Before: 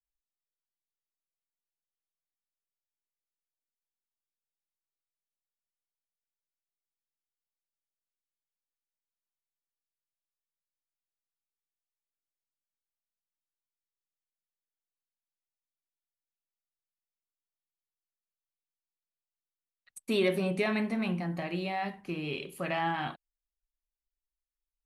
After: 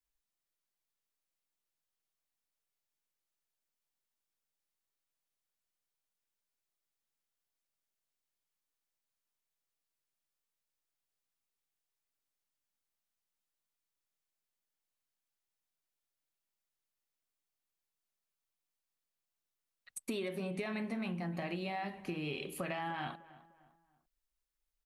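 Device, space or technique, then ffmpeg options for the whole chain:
serial compression, peaks first: -filter_complex "[0:a]acompressor=threshold=-36dB:ratio=6,acompressor=threshold=-45dB:ratio=1.5,asplit=2[link_01][link_02];[link_02]adelay=301,lowpass=frequency=2200:poles=1,volume=-18dB,asplit=2[link_03][link_04];[link_04]adelay=301,lowpass=frequency=2200:poles=1,volume=0.4,asplit=2[link_05][link_06];[link_06]adelay=301,lowpass=frequency=2200:poles=1,volume=0.4[link_07];[link_01][link_03][link_05][link_07]amix=inputs=4:normalize=0,volume=4dB"

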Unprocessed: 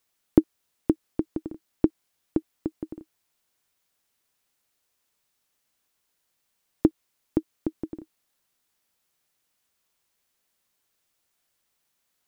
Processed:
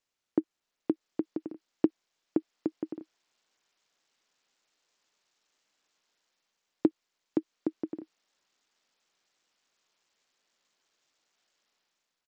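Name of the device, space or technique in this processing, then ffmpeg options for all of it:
Bluetooth headset: -af "highpass=240,dynaudnorm=framelen=170:gausssize=7:maxgain=11.5dB,aresample=16000,aresample=44100,volume=-9dB" -ar 44100 -c:a sbc -b:a 64k

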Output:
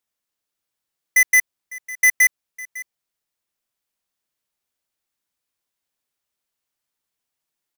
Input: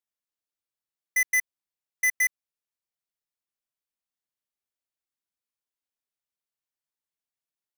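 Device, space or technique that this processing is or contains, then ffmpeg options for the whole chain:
ducked delay: -filter_complex "[0:a]asplit=3[link_01][link_02][link_03];[link_02]adelay=553,volume=-6dB[link_04];[link_03]apad=whole_len=367372[link_05];[link_04][link_05]sidechaincompress=threshold=-42dB:ratio=8:attack=16:release=1290[link_06];[link_01][link_06]amix=inputs=2:normalize=0,volume=9dB"

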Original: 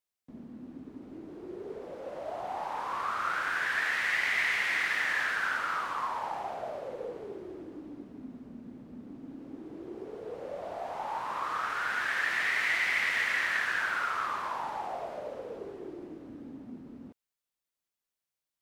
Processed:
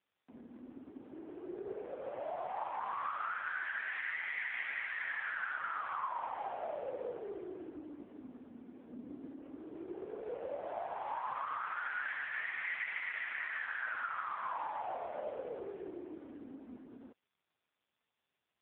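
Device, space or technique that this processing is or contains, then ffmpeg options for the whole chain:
voicemail: -filter_complex "[0:a]asettb=1/sr,asplit=3[link_01][link_02][link_03];[link_01]atrim=end=8.874[link_04];[link_02]atrim=start=8.87:end=9.28,asetpts=PTS-STARTPTS,afade=type=in:duration=0.004:curve=qsin,afade=type=out:start_time=0.406:duration=0.004:curve=qsin,lowshelf=frequency=370:gain=5.5[link_05];[link_03]atrim=start=9.276[link_06];[link_04][link_05]acrossfade=duration=0.004:curve1=hsin:curve2=qsin[link_07];[link_07][link_06]acrossfade=duration=0.004:curve1=qsin:curve2=hsin,highpass=360,lowpass=3300,acompressor=threshold=-34dB:ratio=8,volume=2dB" -ar 8000 -c:a libopencore_amrnb -b:a 5150

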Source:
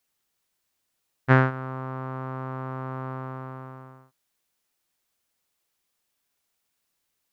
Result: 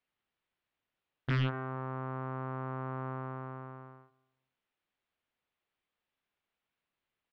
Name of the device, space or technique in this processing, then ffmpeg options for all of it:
synthesiser wavefolder: -filter_complex "[0:a]asplit=2[link_01][link_02];[link_02]adelay=232,lowpass=frequency=2000:poles=1,volume=-21.5dB,asplit=2[link_03][link_04];[link_04]adelay=232,lowpass=frequency=2000:poles=1,volume=0.27[link_05];[link_01][link_03][link_05]amix=inputs=3:normalize=0,aeval=exprs='0.112*(abs(mod(val(0)/0.112+3,4)-2)-1)':channel_layout=same,lowpass=frequency=3300:width=0.5412,lowpass=frequency=3300:width=1.3066,volume=-4.5dB"

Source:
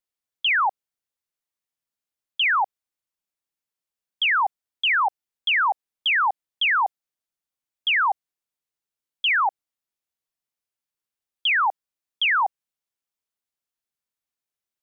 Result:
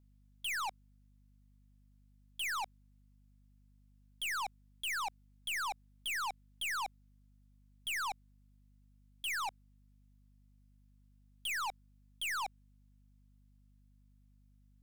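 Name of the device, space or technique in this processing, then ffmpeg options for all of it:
valve amplifier with mains hum: -af "aeval=exprs='(tanh(63.1*val(0)+0.15)-tanh(0.15))/63.1':channel_layout=same,aeval=exprs='val(0)+0.000631*(sin(2*PI*50*n/s)+sin(2*PI*2*50*n/s)/2+sin(2*PI*3*50*n/s)/3+sin(2*PI*4*50*n/s)/4+sin(2*PI*5*50*n/s)/5)':channel_layout=same"

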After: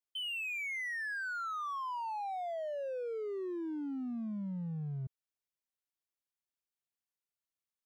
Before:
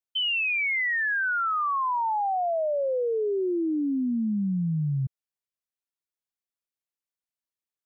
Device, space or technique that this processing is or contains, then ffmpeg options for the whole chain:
limiter into clipper: -af "alimiter=level_in=6.5dB:limit=-24dB:level=0:latency=1:release=18,volume=-6.5dB,asoftclip=type=hard:threshold=-32dB,volume=-4dB"

